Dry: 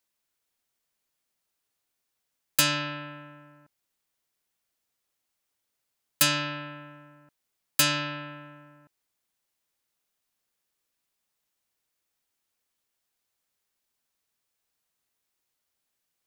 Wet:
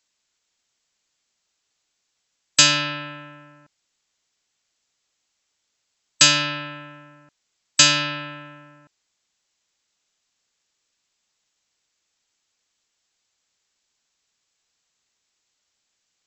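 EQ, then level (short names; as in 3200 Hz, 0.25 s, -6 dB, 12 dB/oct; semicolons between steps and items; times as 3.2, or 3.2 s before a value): brick-wall FIR low-pass 7900 Hz; high shelf 2500 Hz +9 dB; +4.0 dB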